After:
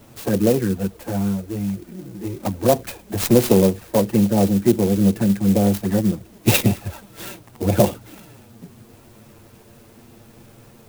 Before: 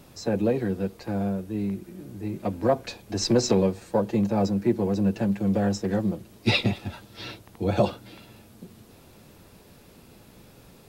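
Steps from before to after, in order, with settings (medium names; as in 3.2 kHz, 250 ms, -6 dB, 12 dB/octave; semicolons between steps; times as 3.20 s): touch-sensitive flanger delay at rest 10 ms, full sweep at -19.5 dBFS; sampling jitter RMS 0.063 ms; trim +7.5 dB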